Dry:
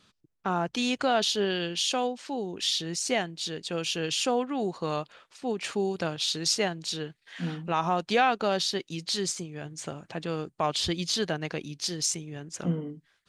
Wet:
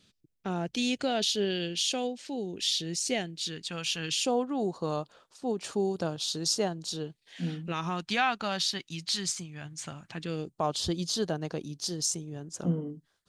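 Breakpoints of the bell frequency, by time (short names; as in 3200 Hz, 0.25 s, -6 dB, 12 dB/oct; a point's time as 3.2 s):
bell -13 dB 1.2 oct
3.28 s 1100 Hz
3.92 s 300 Hz
4.35 s 2200 Hz
6.93 s 2200 Hz
8.23 s 440 Hz
10.07 s 440 Hz
10.61 s 2200 Hz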